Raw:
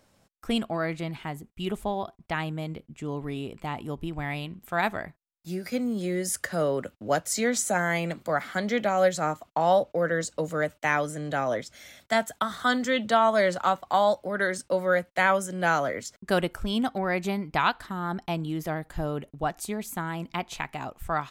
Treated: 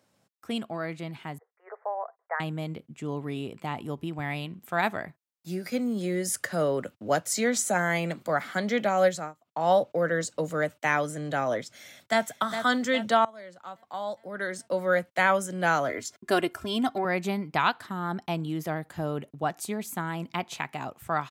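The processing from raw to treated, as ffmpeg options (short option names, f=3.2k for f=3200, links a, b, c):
-filter_complex "[0:a]asettb=1/sr,asplit=3[a][b][c];[a]atrim=end=1.384[d];[b]atrim=start=1.38:end=2.4,asetpts=PTS-STARTPTS,afade=t=in:d=0.004:c=qsin,afade=t=out:st=1.016:d=0.004:c=qsin,asuperpass=centerf=950:order=20:qfactor=0.61[e];[c]atrim=start=2.396[f];[d][e]acrossfade=d=0.004:c1=hsin:c2=qsin[g];[g][f]acrossfade=d=0.004:c1=qsin:c2=hsin,asplit=2[h][i];[i]afade=t=in:st=11.78:d=0.01,afade=t=out:st=12.23:d=0.01,aecho=0:1:410|820|1230|1640|2050|2460:0.375837|0.187919|0.0939594|0.0469797|0.0234898|0.0117449[j];[h][j]amix=inputs=2:normalize=0,asettb=1/sr,asplit=3[k][l][m];[k]atrim=end=15.894[n];[l]atrim=start=15.89:end=17.05,asetpts=PTS-STARTPTS,afade=t=in:d=0.004:c=qsin,afade=t=out:st=1.156:d=0.004:c=qsin,aecho=1:1:2.9:0.65,atrim=end_sample=51156[o];[m]atrim=start=17.046[p];[n][o]acrossfade=d=0.004:c1=hsin:c2=qsin[q];[q][p]acrossfade=d=0.004:c1=qsin:c2=hsin,asplit=4[r][s][t][u];[r]atrim=end=9.33,asetpts=PTS-STARTPTS,afade=t=out:st=9.07:d=0.26:silence=0.0841395[v];[s]atrim=start=9.33:end=9.45,asetpts=PTS-STARTPTS,volume=-21.5dB[w];[t]atrim=start=9.45:end=13.25,asetpts=PTS-STARTPTS,afade=t=in:d=0.26:silence=0.0841395,afade=t=out:st=3.796:d=0.004:c=hsin:silence=0.0749894[x];[u]atrim=start=13.25,asetpts=PTS-STARTPTS,afade=t=in:d=1.7:c=qua:silence=0.0749894[y];[v][w][x][y]concat=n=4:v=0:a=1,highpass=f=100:w=0.5412,highpass=f=100:w=1.3066,dynaudnorm=f=280:g=11:m=5dB,volume=-5dB"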